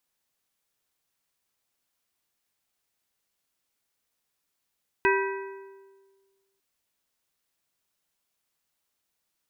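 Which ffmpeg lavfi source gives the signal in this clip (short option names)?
-f lavfi -i "aevalsrc='0.0891*pow(10,-3*t/1.58)*sin(2*PI*390*t)+0.075*pow(10,-3*t/1.2)*sin(2*PI*975*t)+0.0631*pow(10,-3*t/1.042)*sin(2*PI*1560*t)+0.0531*pow(10,-3*t/0.975)*sin(2*PI*1950*t)+0.0447*pow(10,-3*t/0.901)*sin(2*PI*2535*t)':d=1.55:s=44100"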